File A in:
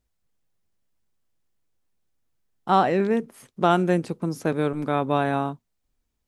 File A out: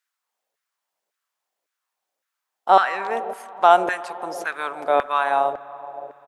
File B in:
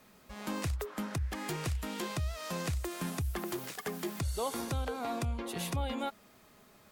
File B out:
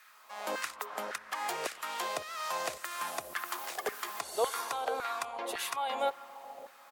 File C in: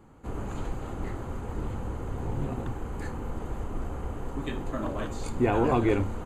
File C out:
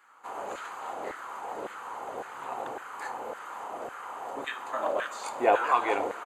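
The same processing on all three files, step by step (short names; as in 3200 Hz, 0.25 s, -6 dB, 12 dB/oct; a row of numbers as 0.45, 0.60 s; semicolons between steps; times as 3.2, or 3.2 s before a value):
on a send: analogue delay 0.142 s, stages 1024, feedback 83%, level -15.5 dB; on the sum: LFO high-pass saw down 1.8 Hz 520–1600 Hz; outdoor echo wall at 54 m, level -29 dB; spring tank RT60 3.5 s, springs 57 ms, chirp 40 ms, DRR 19 dB; gain +2 dB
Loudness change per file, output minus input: +3.0, +1.0, -0.5 LU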